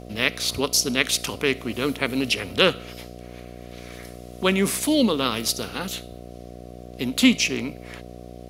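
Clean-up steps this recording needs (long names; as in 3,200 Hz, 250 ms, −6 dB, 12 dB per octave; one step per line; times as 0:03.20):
hum removal 60.4 Hz, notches 12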